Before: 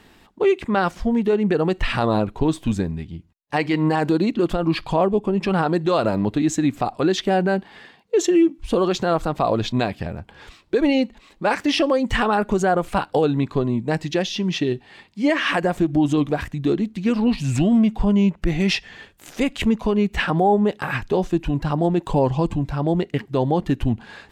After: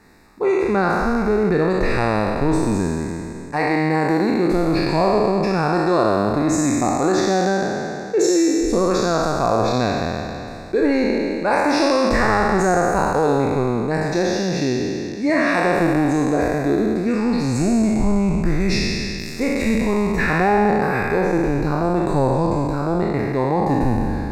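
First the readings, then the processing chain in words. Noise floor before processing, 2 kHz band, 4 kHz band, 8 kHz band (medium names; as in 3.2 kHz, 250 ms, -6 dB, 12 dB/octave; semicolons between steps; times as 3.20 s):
-53 dBFS, +4.0 dB, -1.0 dB, +6.5 dB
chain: spectral sustain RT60 2.77 s; Butterworth band-stop 3.1 kHz, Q 2.1; trim -2.5 dB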